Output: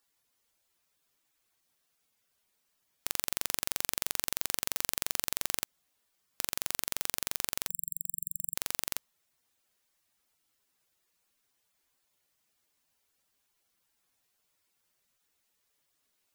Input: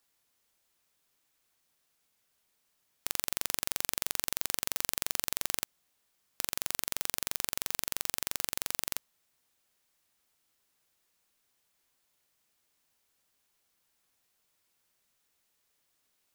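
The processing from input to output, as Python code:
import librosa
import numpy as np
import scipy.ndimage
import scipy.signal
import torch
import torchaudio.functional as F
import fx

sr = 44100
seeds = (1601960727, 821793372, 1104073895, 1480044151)

y = fx.brickwall_bandstop(x, sr, low_hz=170.0, high_hz=7400.0, at=(7.69, 8.55))
y = fx.spec_gate(y, sr, threshold_db=-10, keep='strong')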